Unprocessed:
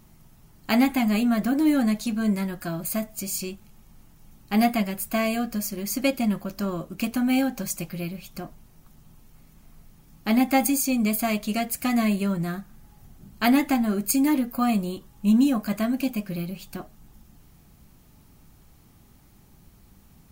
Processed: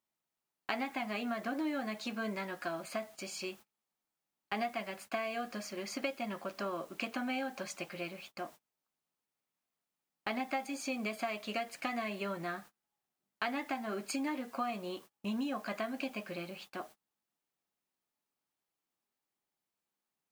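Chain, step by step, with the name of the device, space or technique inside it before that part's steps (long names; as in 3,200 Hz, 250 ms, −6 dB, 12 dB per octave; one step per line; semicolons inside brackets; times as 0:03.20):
baby monitor (band-pass filter 480–3,400 Hz; downward compressor 6 to 1, threshold −33 dBFS, peak gain reduction 14 dB; white noise bed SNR 23 dB; noise gate −51 dBFS, range −29 dB)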